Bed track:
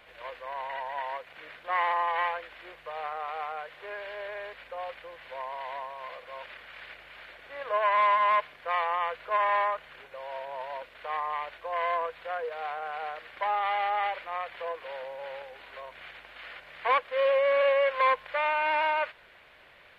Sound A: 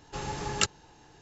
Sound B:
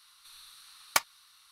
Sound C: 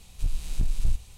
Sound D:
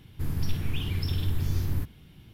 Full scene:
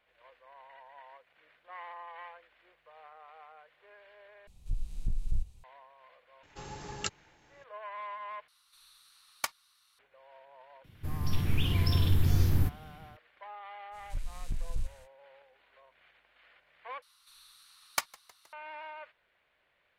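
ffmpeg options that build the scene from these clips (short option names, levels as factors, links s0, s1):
-filter_complex "[3:a]asplit=2[s0][s1];[2:a]asplit=2[s2][s3];[0:a]volume=0.126[s4];[s0]lowshelf=f=450:g=10.5[s5];[4:a]dynaudnorm=f=340:g=3:m=2.82[s6];[s3]asplit=5[s7][s8][s9][s10][s11];[s8]adelay=157,afreqshift=-85,volume=0.0631[s12];[s9]adelay=314,afreqshift=-170,volume=0.0385[s13];[s10]adelay=471,afreqshift=-255,volume=0.0234[s14];[s11]adelay=628,afreqshift=-340,volume=0.0143[s15];[s7][s12][s13][s14][s15]amix=inputs=5:normalize=0[s16];[s4]asplit=4[s17][s18][s19][s20];[s17]atrim=end=4.474[s21];[s5]atrim=end=1.17,asetpts=PTS-STARTPTS,volume=0.141[s22];[s18]atrim=start=5.636:end=8.484[s23];[s2]atrim=end=1.51,asetpts=PTS-STARTPTS,volume=0.398[s24];[s19]atrim=start=9.986:end=17.024[s25];[s16]atrim=end=1.51,asetpts=PTS-STARTPTS,volume=0.531[s26];[s20]atrim=start=18.526[s27];[1:a]atrim=end=1.21,asetpts=PTS-STARTPTS,volume=0.355,afade=t=in:d=0.004:c=hsin,afade=t=out:st=1.206:d=0.004:c=hsin,adelay=6430[s28];[s6]atrim=end=2.33,asetpts=PTS-STARTPTS,volume=0.473,afade=t=in:d=0.004:c=hsin,afade=t=out:st=2.326:d=0.004:c=hsin,adelay=10840[s29];[s1]atrim=end=1.17,asetpts=PTS-STARTPTS,volume=0.335,afade=t=in:d=0.05,afade=t=out:st=1.12:d=0.05,adelay=13910[s30];[s21][s22]acrossfade=d=0.004:c1=hsin:c2=hsin[s31];[s31][s23]acrossfade=d=0.004:c1=hsin:c2=hsin[s32];[s32][s24]acrossfade=d=0.004:c1=hsin:c2=hsin[s33];[s33][s25]acrossfade=d=0.004:c1=hsin:c2=hsin[s34];[s34][s26]acrossfade=d=0.004:c1=hsin:c2=hsin[s35];[s35][s27]acrossfade=d=0.004:c1=hsin:c2=hsin[s36];[s36][s28][s29][s30]amix=inputs=4:normalize=0"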